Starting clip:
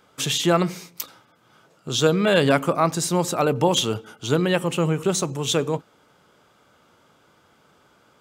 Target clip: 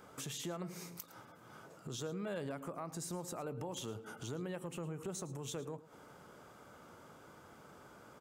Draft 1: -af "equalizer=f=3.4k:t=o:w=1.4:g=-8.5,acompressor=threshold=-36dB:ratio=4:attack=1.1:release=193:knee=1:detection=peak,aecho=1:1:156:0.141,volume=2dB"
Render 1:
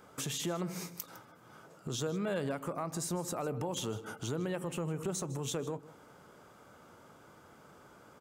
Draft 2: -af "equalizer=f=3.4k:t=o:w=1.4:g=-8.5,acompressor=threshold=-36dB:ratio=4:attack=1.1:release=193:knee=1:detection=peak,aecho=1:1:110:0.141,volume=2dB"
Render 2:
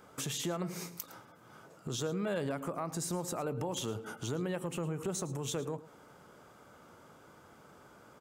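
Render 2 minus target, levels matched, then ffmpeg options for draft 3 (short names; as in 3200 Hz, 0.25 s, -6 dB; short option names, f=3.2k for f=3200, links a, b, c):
compressor: peak gain reduction -6.5 dB
-af "equalizer=f=3.4k:t=o:w=1.4:g=-8.5,acompressor=threshold=-44.5dB:ratio=4:attack=1.1:release=193:knee=1:detection=peak,aecho=1:1:110:0.141,volume=2dB"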